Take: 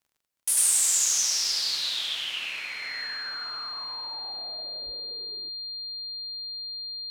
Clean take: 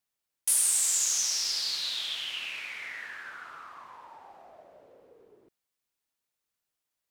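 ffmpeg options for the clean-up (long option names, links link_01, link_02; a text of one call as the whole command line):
ffmpeg -i in.wav -filter_complex "[0:a]adeclick=threshold=4,bandreject=frequency=4200:width=30,asplit=3[link_01][link_02][link_03];[link_01]afade=type=out:start_time=4.85:duration=0.02[link_04];[link_02]highpass=frequency=140:width=0.5412,highpass=frequency=140:width=1.3066,afade=type=in:start_time=4.85:duration=0.02,afade=type=out:start_time=4.97:duration=0.02[link_05];[link_03]afade=type=in:start_time=4.97:duration=0.02[link_06];[link_04][link_05][link_06]amix=inputs=3:normalize=0,asetnsamples=nb_out_samples=441:pad=0,asendcmd='0.57 volume volume -3.5dB',volume=0dB" out.wav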